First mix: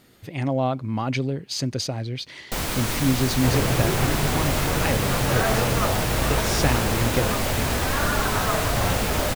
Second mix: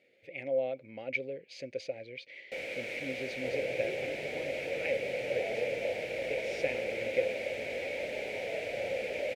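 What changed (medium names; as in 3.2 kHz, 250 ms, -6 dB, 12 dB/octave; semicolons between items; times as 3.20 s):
second sound: add brick-wall FIR low-pass 1 kHz; master: add two resonant band-passes 1.1 kHz, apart 2.1 oct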